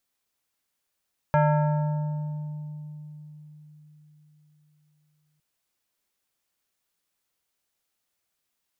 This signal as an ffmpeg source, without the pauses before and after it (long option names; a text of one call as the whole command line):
ffmpeg -f lavfi -i "aevalsrc='0.158*pow(10,-3*t/4.53)*sin(2*PI*151*t+1.3*pow(10,-3*t/3.45)*sin(2*PI*4.96*151*t))':duration=4.06:sample_rate=44100" out.wav